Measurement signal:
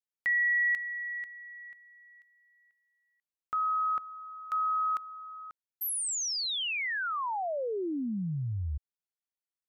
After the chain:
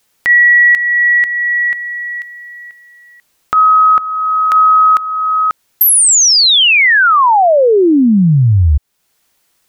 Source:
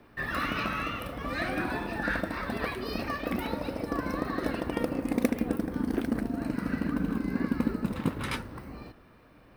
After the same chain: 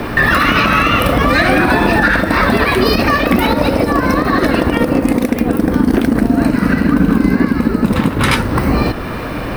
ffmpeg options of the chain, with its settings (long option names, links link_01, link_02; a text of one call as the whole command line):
ffmpeg -i in.wav -af "acompressor=threshold=-45dB:ratio=4:attack=45:release=407:knee=6:detection=rms,alimiter=level_in=36dB:limit=-1dB:release=50:level=0:latency=1,volume=-1dB" out.wav